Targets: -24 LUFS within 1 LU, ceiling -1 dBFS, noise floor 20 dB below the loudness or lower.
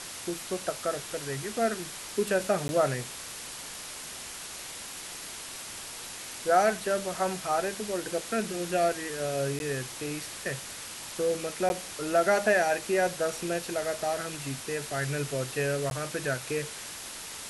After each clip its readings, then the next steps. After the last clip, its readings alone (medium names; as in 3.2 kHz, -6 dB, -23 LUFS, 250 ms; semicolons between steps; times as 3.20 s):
dropouts 4; longest dropout 11 ms; noise floor -41 dBFS; noise floor target -51 dBFS; loudness -30.5 LUFS; peak level -12.0 dBFS; loudness target -24.0 LUFS
-> interpolate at 2.68/9.59/11.69/15.90 s, 11 ms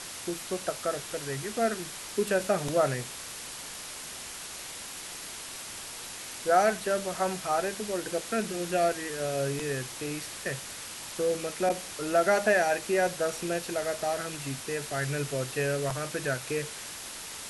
dropouts 0; noise floor -41 dBFS; noise floor target -51 dBFS
-> noise reduction 10 dB, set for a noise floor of -41 dBFS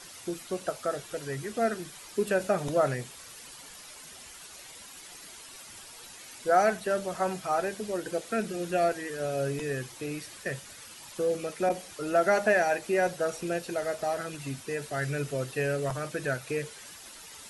noise floor -48 dBFS; noise floor target -50 dBFS
-> noise reduction 6 dB, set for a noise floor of -48 dBFS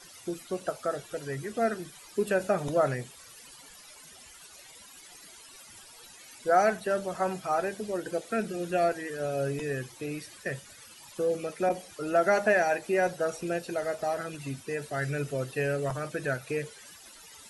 noise floor -51 dBFS; loudness -30.5 LUFS; peak level -12.5 dBFS; loudness target -24.0 LUFS
-> trim +6.5 dB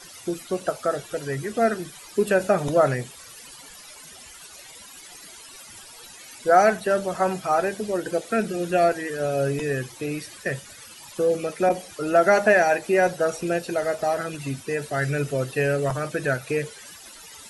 loudness -24.0 LUFS; peak level -6.0 dBFS; noise floor -45 dBFS